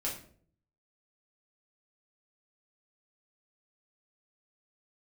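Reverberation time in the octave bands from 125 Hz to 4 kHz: 0.90, 0.70, 0.60, 0.45, 0.40, 0.35 s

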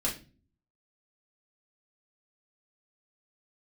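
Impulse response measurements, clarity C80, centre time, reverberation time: 16.0 dB, 21 ms, not exponential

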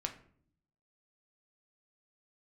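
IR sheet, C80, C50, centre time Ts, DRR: 16.0 dB, 12.0 dB, 11 ms, 3.5 dB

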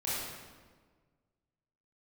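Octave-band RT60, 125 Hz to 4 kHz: 2.0, 1.8, 1.6, 1.4, 1.2, 1.0 s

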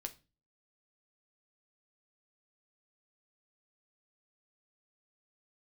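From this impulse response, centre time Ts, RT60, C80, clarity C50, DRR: 5 ms, 0.30 s, 24.0 dB, 17.5 dB, 6.0 dB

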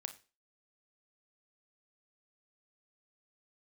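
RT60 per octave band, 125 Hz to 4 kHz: 0.25, 0.35, 0.35, 0.30, 0.30, 0.35 s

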